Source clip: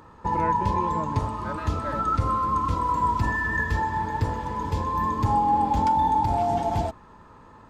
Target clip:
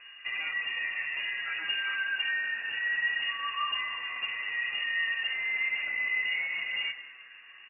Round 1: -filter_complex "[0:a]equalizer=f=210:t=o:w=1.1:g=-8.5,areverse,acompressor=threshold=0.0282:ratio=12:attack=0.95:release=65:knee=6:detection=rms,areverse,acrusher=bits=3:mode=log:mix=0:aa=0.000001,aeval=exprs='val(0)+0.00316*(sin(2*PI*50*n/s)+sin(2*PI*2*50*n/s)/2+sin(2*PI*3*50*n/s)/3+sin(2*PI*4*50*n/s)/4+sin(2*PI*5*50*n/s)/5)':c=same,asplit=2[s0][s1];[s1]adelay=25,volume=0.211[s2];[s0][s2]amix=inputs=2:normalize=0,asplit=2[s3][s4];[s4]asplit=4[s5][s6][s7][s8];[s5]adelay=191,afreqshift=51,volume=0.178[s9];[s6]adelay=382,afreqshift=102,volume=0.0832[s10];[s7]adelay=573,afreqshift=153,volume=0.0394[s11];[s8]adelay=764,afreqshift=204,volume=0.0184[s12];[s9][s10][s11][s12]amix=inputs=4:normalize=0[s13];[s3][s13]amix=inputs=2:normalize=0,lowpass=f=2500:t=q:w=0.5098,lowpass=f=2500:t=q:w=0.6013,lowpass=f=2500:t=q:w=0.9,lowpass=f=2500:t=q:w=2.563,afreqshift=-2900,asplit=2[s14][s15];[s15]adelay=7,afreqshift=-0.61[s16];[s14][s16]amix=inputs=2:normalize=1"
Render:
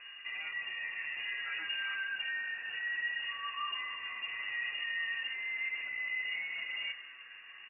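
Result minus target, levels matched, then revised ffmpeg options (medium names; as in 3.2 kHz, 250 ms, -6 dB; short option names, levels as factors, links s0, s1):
compression: peak gain reduction +7 dB
-filter_complex "[0:a]equalizer=f=210:t=o:w=1.1:g=-8.5,areverse,acompressor=threshold=0.0668:ratio=12:attack=0.95:release=65:knee=6:detection=rms,areverse,acrusher=bits=3:mode=log:mix=0:aa=0.000001,aeval=exprs='val(0)+0.00316*(sin(2*PI*50*n/s)+sin(2*PI*2*50*n/s)/2+sin(2*PI*3*50*n/s)/3+sin(2*PI*4*50*n/s)/4+sin(2*PI*5*50*n/s)/5)':c=same,asplit=2[s0][s1];[s1]adelay=25,volume=0.211[s2];[s0][s2]amix=inputs=2:normalize=0,asplit=2[s3][s4];[s4]asplit=4[s5][s6][s7][s8];[s5]adelay=191,afreqshift=51,volume=0.178[s9];[s6]adelay=382,afreqshift=102,volume=0.0832[s10];[s7]adelay=573,afreqshift=153,volume=0.0394[s11];[s8]adelay=764,afreqshift=204,volume=0.0184[s12];[s9][s10][s11][s12]amix=inputs=4:normalize=0[s13];[s3][s13]amix=inputs=2:normalize=0,lowpass=f=2500:t=q:w=0.5098,lowpass=f=2500:t=q:w=0.6013,lowpass=f=2500:t=q:w=0.9,lowpass=f=2500:t=q:w=2.563,afreqshift=-2900,asplit=2[s14][s15];[s15]adelay=7,afreqshift=-0.61[s16];[s14][s16]amix=inputs=2:normalize=1"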